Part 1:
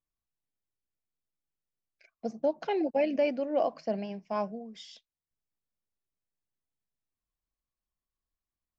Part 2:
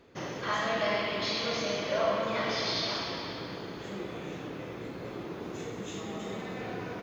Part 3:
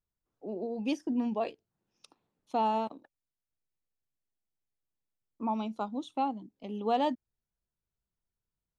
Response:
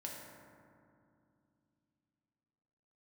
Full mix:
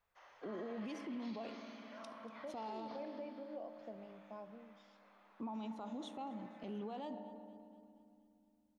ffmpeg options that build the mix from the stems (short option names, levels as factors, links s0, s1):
-filter_complex "[0:a]volume=0.141,asplit=2[s0][s1];[s1]volume=0.299[s2];[1:a]highpass=f=780:w=0.5412,highpass=f=780:w=1.3066,volume=0.168[s3];[2:a]acompressor=threshold=0.0141:ratio=16,volume=0.841,asplit=3[s4][s5][s6];[s5]volume=0.447[s7];[s6]volume=0.106[s8];[s0][s3]amix=inputs=2:normalize=0,lowpass=f=1300:p=1,acompressor=threshold=0.00398:ratio=4,volume=1[s9];[3:a]atrim=start_sample=2205[s10];[s2][s7]amix=inputs=2:normalize=0[s11];[s11][s10]afir=irnorm=-1:irlink=0[s12];[s8]aecho=0:1:238|476|714|952|1190|1428|1666|1904:1|0.54|0.292|0.157|0.085|0.0459|0.0248|0.0134[s13];[s4][s9][s12][s13]amix=inputs=4:normalize=0,alimiter=level_in=4.47:limit=0.0631:level=0:latency=1:release=22,volume=0.224"